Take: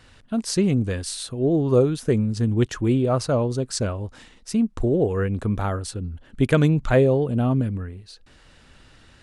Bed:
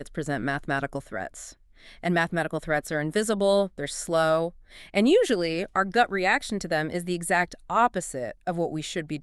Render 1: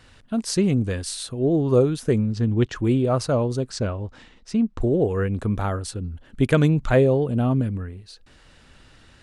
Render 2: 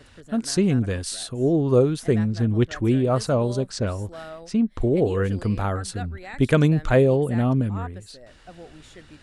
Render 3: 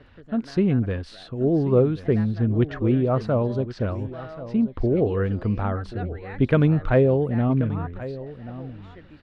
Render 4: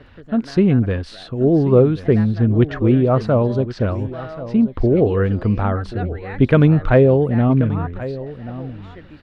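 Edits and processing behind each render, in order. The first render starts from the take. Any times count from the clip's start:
2.21–2.76 s: low-pass 5 kHz; 3.70–4.81 s: distance through air 89 m
add bed -16 dB
distance through air 330 m; delay 1083 ms -15 dB
trim +6 dB; peak limiter -2 dBFS, peak gain reduction 1 dB

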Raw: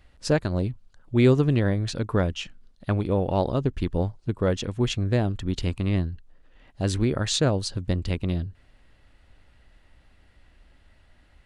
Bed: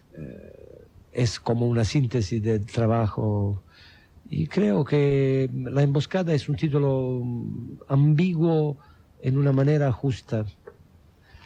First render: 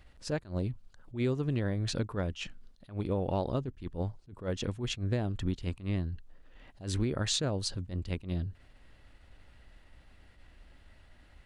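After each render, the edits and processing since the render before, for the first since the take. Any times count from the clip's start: compression 6:1, threshold -27 dBFS, peak gain reduction 13 dB; attacks held to a fixed rise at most 190 dB/s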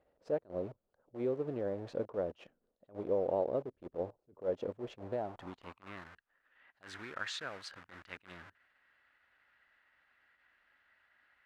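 in parallel at -5 dB: bit crusher 6-bit; on the sum: band-pass sweep 530 Hz -> 1.6 kHz, 4.90–6.13 s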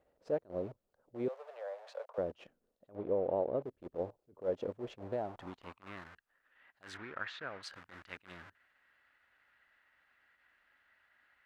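1.28–2.18 s: steep high-pass 560 Hz 48 dB/octave; 2.95–3.62 s: distance through air 230 m; 6.97–7.63 s: low-pass 2.5 kHz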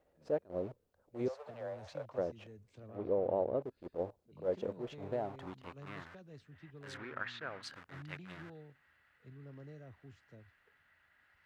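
add bed -31 dB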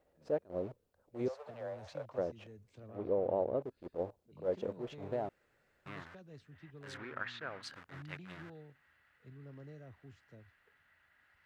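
5.29–5.86 s: room tone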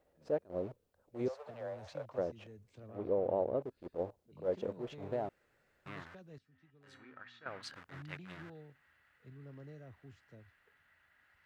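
6.38–7.46 s: feedback comb 260 Hz, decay 0.3 s, harmonics odd, mix 80%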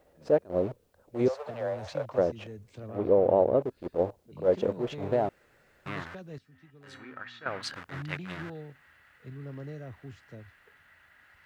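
trim +10.5 dB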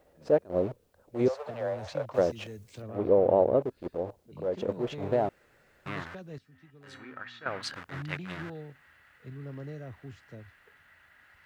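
2.14–2.82 s: treble shelf 2.8 kHz +10 dB; 3.88–4.69 s: compression 2:1, threshold -31 dBFS

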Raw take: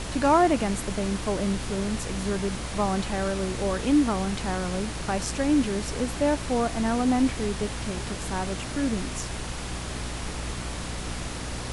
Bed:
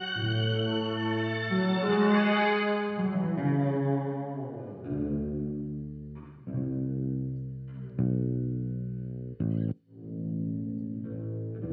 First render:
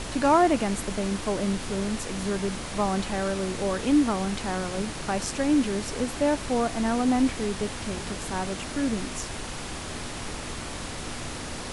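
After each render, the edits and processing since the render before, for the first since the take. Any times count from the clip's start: de-hum 60 Hz, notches 3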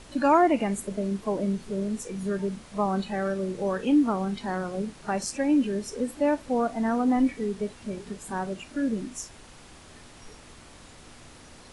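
noise print and reduce 14 dB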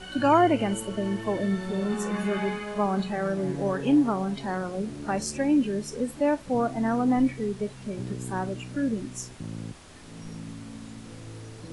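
add bed -7.5 dB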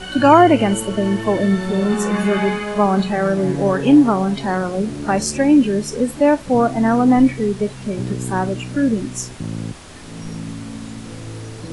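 trim +10 dB; peak limiter -1 dBFS, peak gain reduction 1.5 dB

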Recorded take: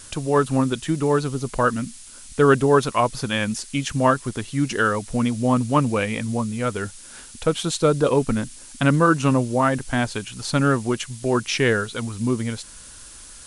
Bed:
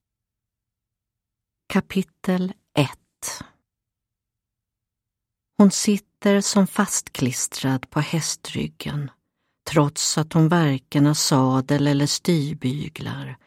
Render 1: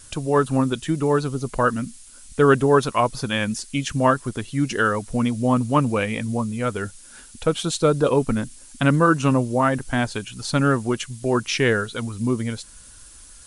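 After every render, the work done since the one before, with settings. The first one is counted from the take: noise reduction 6 dB, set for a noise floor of -43 dBFS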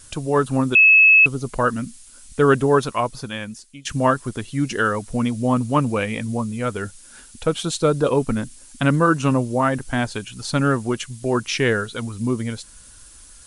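0.75–1.26 s: bleep 2.59 kHz -8 dBFS; 2.72–3.85 s: fade out, to -20.5 dB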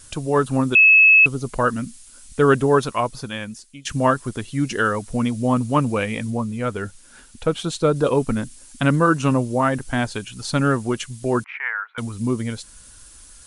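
6.30–7.96 s: treble shelf 4.2 kHz -6 dB; 11.44–11.98 s: elliptic band-pass 850–2200 Hz, stop band 70 dB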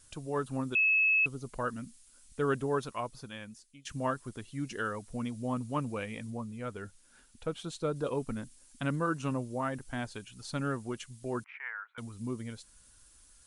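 trim -14.5 dB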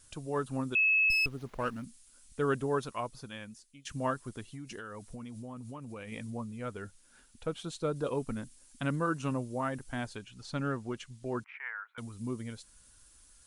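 1.10–1.84 s: sliding maximum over 5 samples; 4.51–6.12 s: compression 12:1, threshold -39 dBFS; 10.15–11.48 s: distance through air 58 m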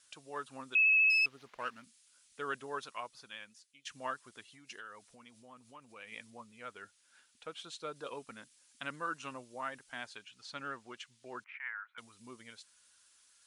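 band-pass filter 2.9 kHz, Q 0.58; vibrato 14 Hz 23 cents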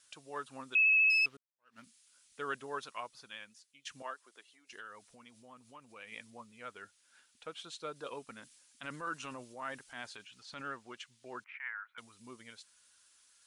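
1.37–1.79 s: fade in exponential; 4.02–4.73 s: ladder high-pass 280 Hz, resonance 20%; 8.39–10.63 s: transient shaper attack -5 dB, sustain +4 dB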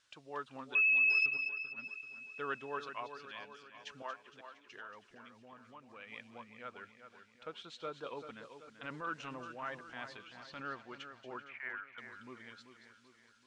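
distance through air 140 m; two-band feedback delay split 2.6 kHz, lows 386 ms, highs 231 ms, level -9.5 dB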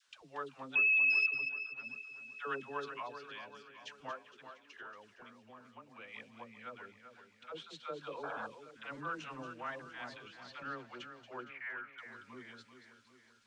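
phase dispersion lows, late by 93 ms, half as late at 560 Hz; 8.23–8.47 s: painted sound noise 450–1700 Hz -42 dBFS

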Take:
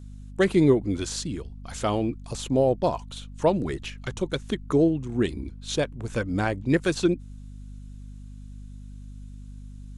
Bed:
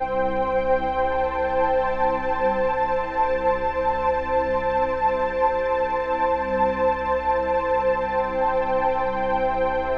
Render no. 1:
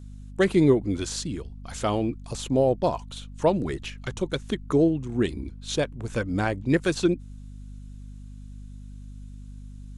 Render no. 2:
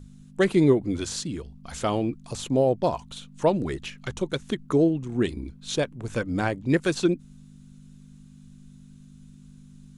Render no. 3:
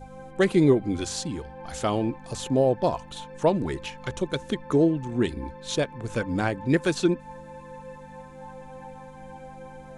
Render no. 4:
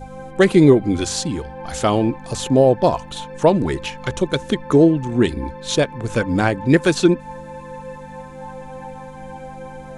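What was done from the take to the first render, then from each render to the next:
no audible change
hum notches 50/100 Hz
add bed -21.5 dB
trim +8 dB; peak limiter -2 dBFS, peak gain reduction 1 dB

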